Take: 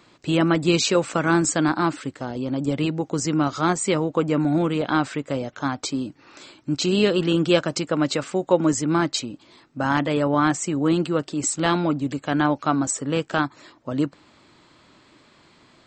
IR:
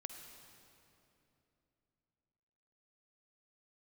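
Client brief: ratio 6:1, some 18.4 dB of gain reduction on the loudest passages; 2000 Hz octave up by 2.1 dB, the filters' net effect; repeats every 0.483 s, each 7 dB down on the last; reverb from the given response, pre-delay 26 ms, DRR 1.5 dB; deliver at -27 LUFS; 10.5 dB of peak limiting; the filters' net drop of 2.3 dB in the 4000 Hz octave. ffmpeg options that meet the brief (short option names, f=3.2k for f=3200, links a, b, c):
-filter_complex "[0:a]equalizer=f=2k:t=o:g=4,equalizer=f=4k:t=o:g=-4.5,acompressor=threshold=-34dB:ratio=6,alimiter=level_in=5dB:limit=-24dB:level=0:latency=1,volume=-5dB,aecho=1:1:483|966|1449|1932|2415:0.447|0.201|0.0905|0.0407|0.0183,asplit=2[a][b];[1:a]atrim=start_sample=2205,adelay=26[c];[b][c]afir=irnorm=-1:irlink=0,volume=2dB[d];[a][d]amix=inputs=2:normalize=0,volume=9.5dB"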